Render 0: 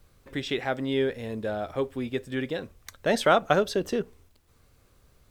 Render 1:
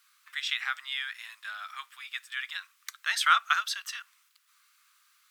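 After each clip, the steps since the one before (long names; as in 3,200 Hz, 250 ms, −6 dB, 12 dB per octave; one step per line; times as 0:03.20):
elliptic high-pass filter 1,200 Hz, stop band 60 dB
level +4 dB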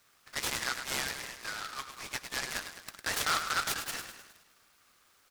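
brickwall limiter −21 dBFS, peak gain reduction 11 dB
on a send: repeating echo 104 ms, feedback 55%, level −8.5 dB
on the sum: short delay modulated by noise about 2,700 Hz, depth 0.077 ms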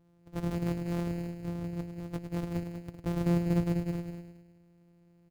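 samples sorted by size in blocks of 256 samples
tilt shelving filter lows +9 dB, about 690 Hz
on a send: single-tap delay 192 ms −8.5 dB
on the sum: level −3.5 dB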